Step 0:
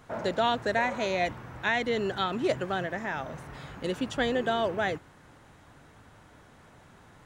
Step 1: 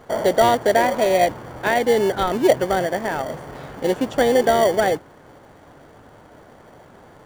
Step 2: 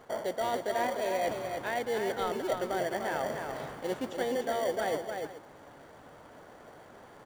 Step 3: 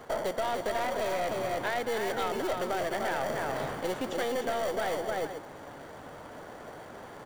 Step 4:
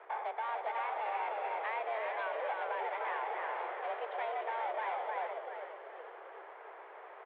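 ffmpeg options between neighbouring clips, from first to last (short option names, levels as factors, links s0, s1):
-filter_complex "[0:a]equalizer=f=590:w=0.54:g=13,asplit=2[s0][s1];[s1]acrusher=samples=34:mix=1:aa=0.000001,volume=0.447[s2];[s0][s2]amix=inputs=2:normalize=0,volume=0.891"
-af "areverse,acompressor=threshold=0.0708:ratio=6,areverse,lowshelf=f=220:g=-7.5,aecho=1:1:197|299|429:0.141|0.531|0.158,volume=0.562"
-filter_complex "[0:a]acrossover=split=570|970[s0][s1][s2];[s0]alimiter=level_in=2.99:limit=0.0631:level=0:latency=1,volume=0.335[s3];[s3][s1][s2]amix=inputs=3:normalize=0,aeval=exprs='(tanh(28.2*val(0)+0.45)-tanh(0.45))/28.2':c=same,acompressor=threshold=0.0178:ratio=6,volume=2.66"
-filter_complex "[0:a]asplit=7[s0][s1][s2][s3][s4][s5][s6];[s1]adelay=388,afreqshift=-110,volume=0.473[s7];[s2]adelay=776,afreqshift=-220,volume=0.226[s8];[s3]adelay=1164,afreqshift=-330,volume=0.108[s9];[s4]adelay=1552,afreqshift=-440,volume=0.0525[s10];[s5]adelay=1940,afreqshift=-550,volume=0.0251[s11];[s6]adelay=2328,afreqshift=-660,volume=0.012[s12];[s0][s7][s8][s9][s10][s11][s12]amix=inputs=7:normalize=0,aeval=exprs='val(0)+0.00447*(sin(2*PI*60*n/s)+sin(2*PI*2*60*n/s)/2+sin(2*PI*3*60*n/s)/3+sin(2*PI*4*60*n/s)/4+sin(2*PI*5*60*n/s)/5)':c=same,highpass=f=180:t=q:w=0.5412,highpass=f=180:t=q:w=1.307,lowpass=f=2700:t=q:w=0.5176,lowpass=f=2700:t=q:w=0.7071,lowpass=f=2700:t=q:w=1.932,afreqshift=220,volume=0.473"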